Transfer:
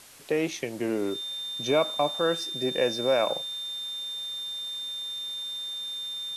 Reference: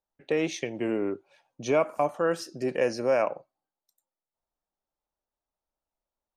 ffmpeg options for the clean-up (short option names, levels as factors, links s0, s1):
-af "bandreject=f=3600:w=30,afwtdn=0.0035,asetnsamples=n=441:p=0,asendcmd='3.29 volume volume -6dB',volume=1"